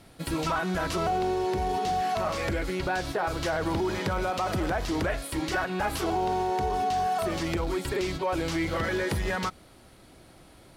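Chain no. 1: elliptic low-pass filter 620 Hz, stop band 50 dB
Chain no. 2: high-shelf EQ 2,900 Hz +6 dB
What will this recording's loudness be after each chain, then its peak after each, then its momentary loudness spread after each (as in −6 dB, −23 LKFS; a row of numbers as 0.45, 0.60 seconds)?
−32.5, −28.0 LKFS; −19.5, −14.5 dBFS; 4, 2 LU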